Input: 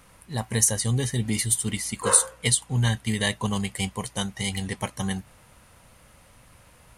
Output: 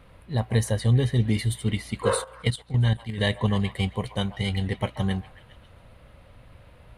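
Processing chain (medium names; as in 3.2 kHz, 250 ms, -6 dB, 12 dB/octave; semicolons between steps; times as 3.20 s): FFT filter 100 Hz 0 dB, 190 Hz -5 dB, 600 Hz -2 dB, 850 Hz -8 dB, 3.9 kHz -8 dB, 6.1 kHz -24 dB, 13 kHz -20 dB; on a send: repeats whose band climbs or falls 135 ms, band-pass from 920 Hz, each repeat 0.7 oct, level -11 dB; 2.24–3.18 s: on the sum: level held to a coarse grid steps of 13 dB; trim +6.5 dB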